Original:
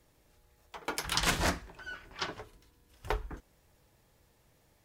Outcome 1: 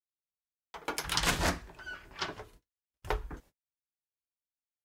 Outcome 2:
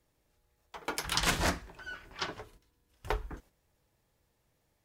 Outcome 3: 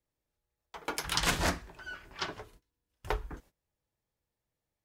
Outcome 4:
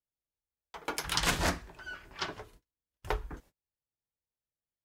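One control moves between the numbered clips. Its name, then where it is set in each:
noise gate, range: −48, −8, −21, −35 decibels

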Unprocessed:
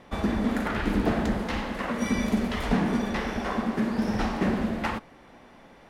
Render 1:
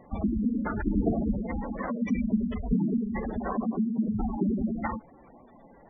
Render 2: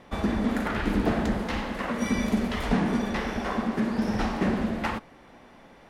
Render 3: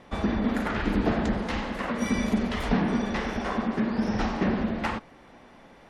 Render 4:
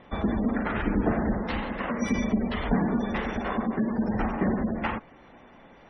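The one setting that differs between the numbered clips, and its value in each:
gate on every frequency bin, under each frame's peak: −10, −60, −45, −25 decibels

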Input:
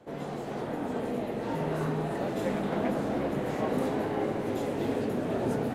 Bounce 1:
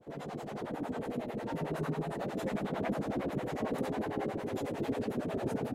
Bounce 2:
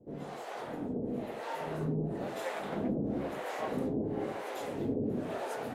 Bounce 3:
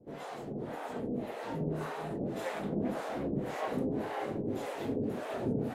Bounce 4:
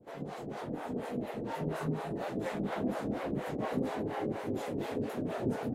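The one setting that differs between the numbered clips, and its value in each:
two-band tremolo in antiphase, speed: 11, 1, 1.8, 4.2 Hertz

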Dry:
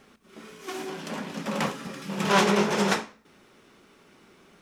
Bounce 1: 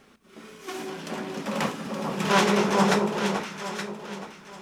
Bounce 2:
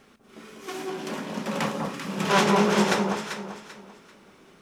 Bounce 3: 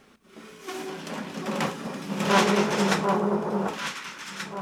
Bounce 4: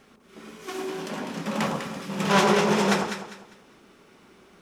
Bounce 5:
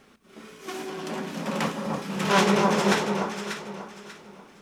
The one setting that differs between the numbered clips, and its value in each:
delay that swaps between a low-pass and a high-pass, delay time: 436, 195, 741, 100, 295 milliseconds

